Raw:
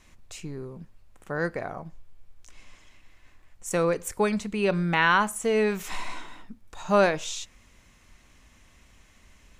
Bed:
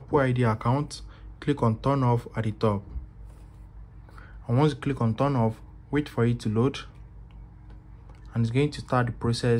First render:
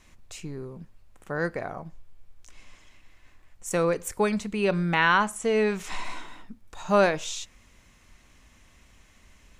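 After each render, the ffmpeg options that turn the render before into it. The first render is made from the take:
-filter_complex "[0:a]asettb=1/sr,asplit=3[a][b][c];[a]atrim=end=5.074[d];[b]atrim=start=5.07:end=6.05,asetpts=PTS-STARTPTS,afade=t=in:d=0.004:c=qsin,afade=t=out:st=0.976:d=0.004:c=qsin,lowpass=9.1k[e];[c]atrim=start=6.046[f];[d][e]acrossfade=d=0.004:c1=hsin:c2=qsin[g];[g][f]acrossfade=d=0.004:c1=qsin:c2=hsin"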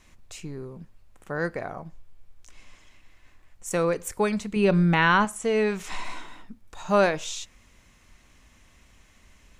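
-filter_complex "[0:a]asettb=1/sr,asplit=3[a][b][c];[a]atrim=end=4.564[d];[b]atrim=start=4.56:end=5.25,asetpts=PTS-STARTPTS,afade=t=in:d=0.004:c=qsin,afade=t=out:st=0.686:d=0.004:c=qsin,lowshelf=f=320:g=8.5[e];[c]atrim=start=5.246[f];[d][e]acrossfade=d=0.004:c1=hsin:c2=qsin[g];[g][f]acrossfade=d=0.004:c1=qsin:c2=hsin"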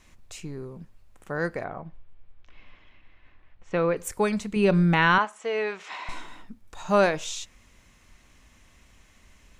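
-filter_complex "[0:a]asettb=1/sr,asplit=3[a][b][c];[a]atrim=end=1.644[d];[b]atrim=start=1.64:end=3.97,asetpts=PTS-STARTPTS,afade=t=in:d=0.004:c=qsin,afade=t=out:st=2.326:d=0.004:c=qsin,lowpass=f=3.5k:w=0.5412,lowpass=f=3.5k:w=1.3066[e];[c]atrim=start=3.966[f];[d][e]acrossfade=d=0.004:c1=hsin:c2=qsin[g];[g][f]acrossfade=d=0.004:c1=qsin:c2=hsin,asettb=1/sr,asplit=3[h][i][j];[h]atrim=end=5.184[k];[i]atrim=start=5.18:end=6.09,asetpts=PTS-STARTPTS,afade=t=in:d=0.004:c=qsin,afade=t=out:st=0.906:d=0.004:c=qsin,highpass=490,lowpass=3.9k[l];[j]atrim=start=6.086[m];[k][l]acrossfade=d=0.004:c1=hsin:c2=qsin[n];[n][m]acrossfade=d=0.004:c1=qsin:c2=hsin"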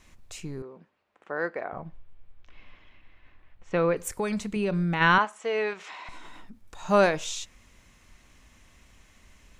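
-filter_complex "[0:a]asettb=1/sr,asplit=3[a][b][c];[a]atrim=end=0.624[d];[b]atrim=start=0.62:end=1.73,asetpts=PTS-STARTPTS,afade=t=in:d=0.004:c=qsin,afade=t=out:st=1.106:d=0.004:c=qsin,highpass=350,lowpass=2.9k[e];[c]atrim=start=1.726[f];[d][e]acrossfade=d=0.004:c1=hsin:c2=qsin[g];[g][f]acrossfade=d=0.004:c1=qsin:c2=hsin,asplit=3[h][i][j];[h]afade=t=out:st=4.1:d=0.02[k];[i]acompressor=threshold=-25dB:ratio=3:attack=3.2:release=140:knee=1:detection=peak,afade=t=in:st=4.1:d=0.02,afade=t=out:st=5:d=0.02[l];[j]afade=t=in:st=5:d=0.02[m];[k][l][m]amix=inputs=3:normalize=0,asettb=1/sr,asplit=3[n][o][p];[n]atrim=end=5.734[q];[o]atrim=start=5.73:end=6.83,asetpts=PTS-STARTPTS,afade=t=in:d=0.004:c=qsin,afade=t=out:st=1.096:d=0.004:c=qsin,acompressor=threshold=-38dB:ratio=5:attack=3.2:release=140:knee=1:detection=peak[r];[p]atrim=start=6.826[s];[q][r]acrossfade=d=0.004:c1=hsin:c2=qsin[t];[t][s]acrossfade=d=0.004:c1=qsin:c2=hsin"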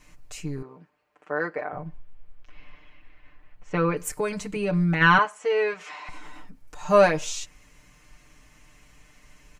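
-af "equalizer=f=3.6k:w=6.3:g=-7,aecho=1:1:6.7:0.89"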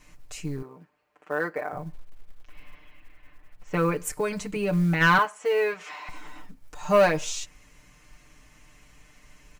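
-af "asoftclip=type=tanh:threshold=-10.5dB,acrusher=bits=8:mode=log:mix=0:aa=0.000001"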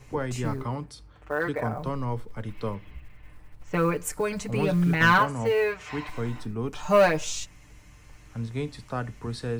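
-filter_complex "[1:a]volume=-7.5dB[a];[0:a][a]amix=inputs=2:normalize=0"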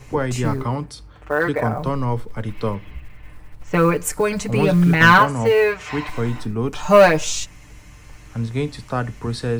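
-af "volume=8dB"

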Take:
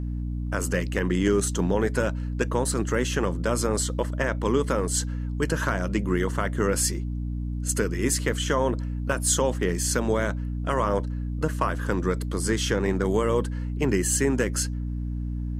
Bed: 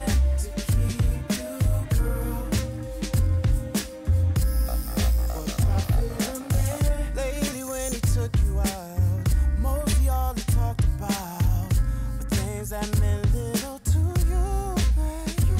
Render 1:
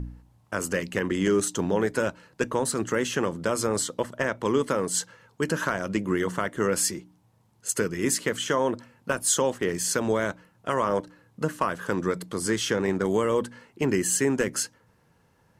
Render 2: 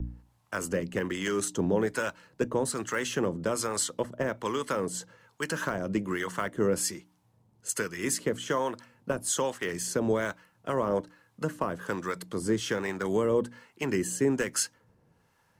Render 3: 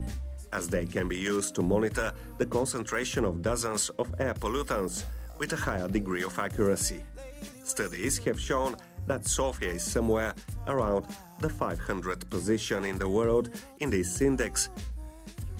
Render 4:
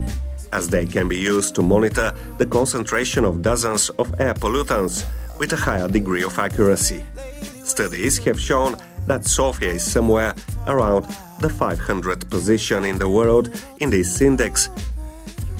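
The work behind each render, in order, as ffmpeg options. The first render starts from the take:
-af "bandreject=f=60:t=h:w=4,bandreject=f=120:t=h:w=4,bandreject=f=180:t=h:w=4,bandreject=f=240:t=h:w=4,bandreject=f=300:t=h:w=4"
-filter_complex "[0:a]acrossover=split=100|1400|2100[a][b][c][d];[c]acrusher=bits=4:mode=log:mix=0:aa=0.000001[e];[a][b][e][d]amix=inputs=4:normalize=0,acrossover=split=760[f][g];[f]aeval=exprs='val(0)*(1-0.7/2+0.7/2*cos(2*PI*1.2*n/s))':c=same[h];[g]aeval=exprs='val(0)*(1-0.7/2-0.7/2*cos(2*PI*1.2*n/s))':c=same[i];[h][i]amix=inputs=2:normalize=0"
-filter_complex "[1:a]volume=-16.5dB[a];[0:a][a]amix=inputs=2:normalize=0"
-af "volume=10.5dB"

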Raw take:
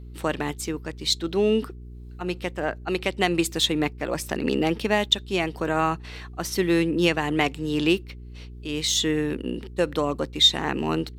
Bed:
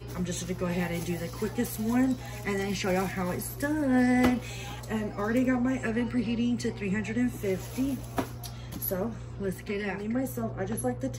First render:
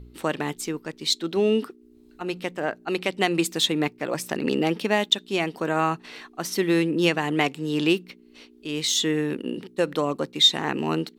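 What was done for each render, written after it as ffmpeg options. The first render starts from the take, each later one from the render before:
-af "bandreject=f=60:t=h:w=4,bandreject=f=120:t=h:w=4,bandreject=f=180:t=h:w=4"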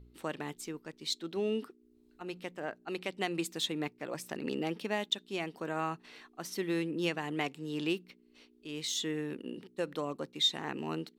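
-af "volume=-11.5dB"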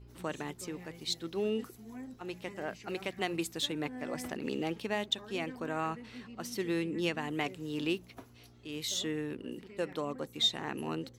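-filter_complex "[1:a]volume=-20dB[a];[0:a][a]amix=inputs=2:normalize=0"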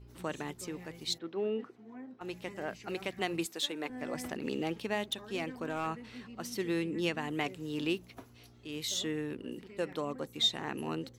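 -filter_complex "[0:a]asplit=3[a][b][c];[a]afade=t=out:st=1.17:d=0.02[d];[b]highpass=230,lowpass=2.1k,afade=t=in:st=1.17:d=0.02,afade=t=out:st=2.2:d=0.02[e];[c]afade=t=in:st=2.2:d=0.02[f];[d][e][f]amix=inputs=3:normalize=0,asettb=1/sr,asplit=3[g][h][i];[g]atrim=end=3.464[j];[h]atrim=start=3.46:end=3.9,asetpts=PTS-STARTPTS,afade=t=in:d=0.004:c=qsin,afade=t=out:st=0.436:d=0.004:c=qsin,highpass=330[k];[i]atrim=start=3.896[l];[j][k]acrossfade=d=0.004:c1=hsin:c2=qsin[m];[m][l]acrossfade=d=0.004:c1=qsin:c2=hsin,asettb=1/sr,asplit=3[n][o][p];[n]atrim=end=5.074[q];[o]atrim=start=5.07:end=5.87,asetpts=PTS-STARTPTS,afade=t=in:d=0.004:c=qsin,afade=t=out:st=0.796:d=0.004:c=qsin,asoftclip=type=hard:threshold=-26.5dB[r];[p]atrim=start=5.866[s];[q][r]acrossfade=d=0.004:c1=hsin:c2=qsin[t];[t][s]acrossfade=d=0.004:c1=qsin:c2=hsin"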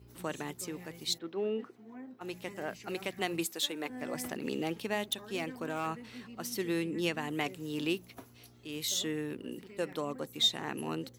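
-af "highpass=74,highshelf=f=10k:g=11.5"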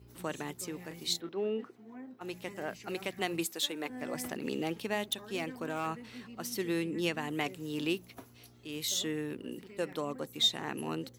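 -filter_complex "[0:a]asettb=1/sr,asplit=3[a][b][c];[a]atrim=end=0.884[d];[b]atrim=start=0.88:end=1.29,asetpts=PTS-STARTPTS,afade=t=in:d=0.004:c=qsin,afade=t=out:st=0.406:d=0.004:c=qsin,asplit=2[e][f];[f]adelay=29,volume=-6dB[g];[e][g]amix=inputs=2:normalize=0,atrim=end_sample=18081[h];[c]atrim=start=1.286[i];[d][h]acrossfade=d=0.004:c1=hsin:c2=qsin[j];[j][i]acrossfade=d=0.004:c1=qsin:c2=hsin"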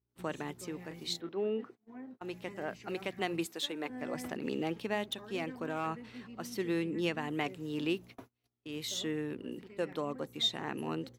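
-af "agate=range=-30dB:threshold=-50dB:ratio=16:detection=peak,highshelf=f=5.2k:g=-11"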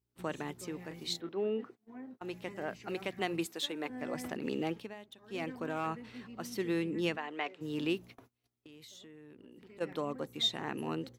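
-filter_complex "[0:a]asplit=3[a][b][c];[a]afade=t=out:st=7.16:d=0.02[d];[b]highpass=490,lowpass=3.8k,afade=t=in:st=7.16:d=0.02,afade=t=out:st=7.6:d=0.02[e];[c]afade=t=in:st=7.6:d=0.02[f];[d][e][f]amix=inputs=3:normalize=0,asplit=3[g][h][i];[g]afade=t=out:st=8.17:d=0.02[j];[h]acompressor=threshold=-50dB:ratio=12:attack=3.2:release=140:knee=1:detection=peak,afade=t=in:st=8.17:d=0.02,afade=t=out:st=9.8:d=0.02[k];[i]afade=t=in:st=9.8:d=0.02[l];[j][k][l]amix=inputs=3:normalize=0,asplit=3[m][n][o];[m]atrim=end=4.94,asetpts=PTS-STARTPTS,afade=t=out:st=4.7:d=0.24:silence=0.177828[p];[n]atrim=start=4.94:end=5.2,asetpts=PTS-STARTPTS,volume=-15dB[q];[o]atrim=start=5.2,asetpts=PTS-STARTPTS,afade=t=in:d=0.24:silence=0.177828[r];[p][q][r]concat=n=3:v=0:a=1"

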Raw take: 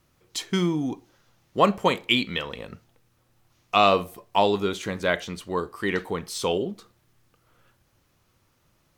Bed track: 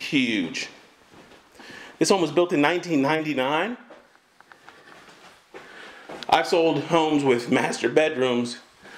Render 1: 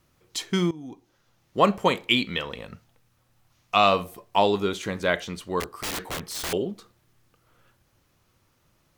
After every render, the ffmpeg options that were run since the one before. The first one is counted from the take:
-filter_complex "[0:a]asettb=1/sr,asplit=3[a][b][c];[a]atrim=end=2.594[d];[b]atrim=start=2.59:end=4.04,asetpts=PTS-STARTPTS,afade=t=in:d=0.004:c=qsin,afade=t=out:st=1.446:d=0.004:c=qsin,equalizer=f=370:t=o:w=0.77:g=-6[e];[c]atrim=start=4.036[f];[d][e]acrossfade=d=0.004:c1=hsin:c2=qsin[g];[g][f]acrossfade=d=0.004:c1=qsin:c2=hsin,asettb=1/sr,asplit=3[h][i][j];[h]atrim=end=5.604[k];[i]atrim=start=5.6:end=6.53,asetpts=PTS-STARTPTS,afade=t=in:d=0.004:c=qsin,afade=t=out:st=0.926:d=0.004:c=qsin,aeval=exprs='(mod(18.8*val(0)+1,2)-1)/18.8':c=same[l];[j]atrim=start=6.526[m];[k][l]acrossfade=d=0.004:c1=hsin:c2=qsin[n];[n][m]acrossfade=d=0.004:c1=qsin:c2=hsin,asplit=2[o][p];[o]atrim=end=0.71,asetpts=PTS-STARTPTS,afade=t=out:st=0.706:d=0.004:c=hsin:silence=0.133352[q];[p]atrim=start=0.71,asetpts=PTS-STARTPTS,afade=t=in:d=0.95:silence=0.133352[r];[q][r]concat=n=2:v=0:a=1"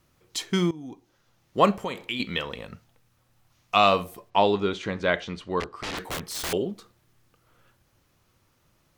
-filter_complex "[0:a]asettb=1/sr,asplit=3[a][b][c];[a]atrim=end=1.774[d];[b]atrim=start=1.77:end=2.2,asetpts=PTS-STARTPTS,afade=t=in:d=0.004:c=qsin,afade=t=out:st=0.426:d=0.004:c=qsin,acompressor=threshold=-31dB:ratio=2.5:attack=3.2:release=140:knee=1:detection=peak[e];[c]atrim=start=2.196[f];[d][e]acrossfade=d=0.004:c1=hsin:c2=qsin[g];[g][f]acrossfade=d=0.004:c1=qsin:c2=hsin,asplit=3[h][i][j];[h]afade=t=out:st=4.29:d=0.02[k];[i]lowpass=4.5k,afade=t=in:st=4.29:d=0.02,afade=t=out:st=5.97:d=0.02[l];[j]afade=t=in:st=5.97:d=0.02[m];[k][l][m]amix=inputs=3:normalize=0"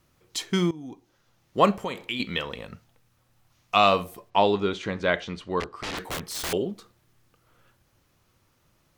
-af anull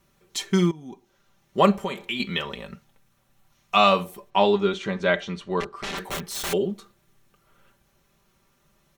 -af "bandreject=f=4.8k:w=12,aecho=1:1:5.1:0.68"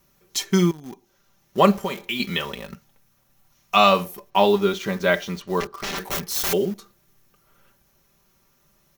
-filter_complex "[0:a]asplit=2[a][b];[b]acrusher=bits=5:mix=0:aa=0.000001,volume=-11.5dB[c];[a][c]amix=inputs=2:normalize=0,aexciter=amount=1.4:drive=6.3:freq=4.9k"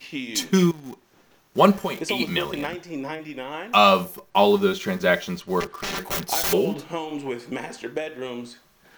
-filter_complex "[1:a]volume=-10dB[a];[0:a][a]amix=inputs=2:normalize=0"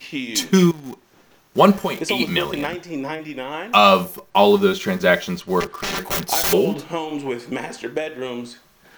-af "volume=4dB,alimiter=limit=-1dB:level=0:latency=1"

